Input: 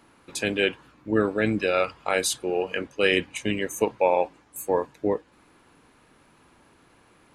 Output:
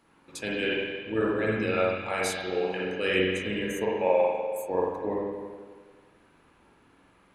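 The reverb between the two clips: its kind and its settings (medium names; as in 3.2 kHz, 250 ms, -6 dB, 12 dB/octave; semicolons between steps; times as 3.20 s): spring tank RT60 1.6 s, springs 43/54 ms, chirp 45 ms, DRR -4.5 dB; trim -8.5 dB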